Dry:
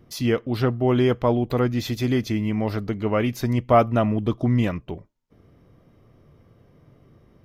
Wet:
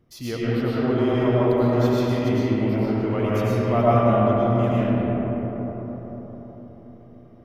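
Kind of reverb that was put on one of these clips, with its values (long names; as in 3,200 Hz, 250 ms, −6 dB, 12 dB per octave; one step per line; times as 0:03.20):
comb and all-pass reverb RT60 4.9 s, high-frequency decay 0.3×, pre-delay 70 ms, DRR −9 dB
level −9 dB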